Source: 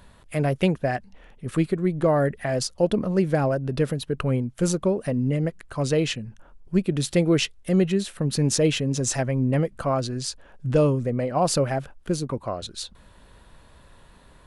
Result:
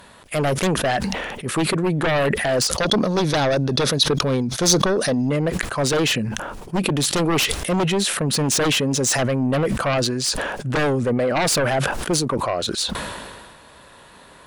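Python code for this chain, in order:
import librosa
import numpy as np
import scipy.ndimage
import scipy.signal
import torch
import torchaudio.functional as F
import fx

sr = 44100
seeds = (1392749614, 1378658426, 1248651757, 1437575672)

p1 = fx.highpass(x, sr, hz=360.0, slope=6)
p2 = fx.fold_sine(p1, sr, drive_db=17, ceiling_db=-6.0)
p3 = p1 + (p2 * librosa.db_to_amplitude(-3.0))
p4 = fx.spec_box(p3, sr, start_s=2.77, length_s=2.53, low_hz=3300.0, high_hz=6700.0, gain_db=10)
p5 = fx.sustainer(p4, sr, db_per_s=32.0)
y = p5 * librosa.db_to_amplitude(-8.5)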